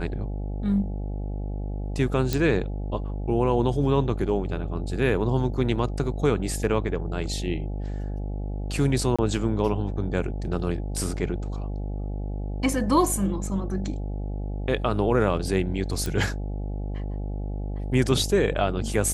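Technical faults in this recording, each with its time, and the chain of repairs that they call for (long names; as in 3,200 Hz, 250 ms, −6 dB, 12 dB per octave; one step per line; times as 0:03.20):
mains buzz 50 Hz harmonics 17 −30 dBFS
0:02.33: click −10 dBFS
0:09.16–0:09.19: drop-out 26 ms
0:16.06: click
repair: click removal
hum removal 50 Hz, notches 17
repair the gap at 0:09.16, 26 ms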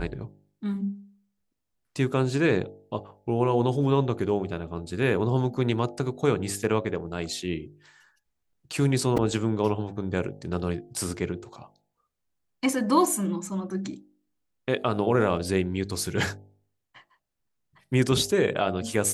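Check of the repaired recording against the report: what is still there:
0:02.33: click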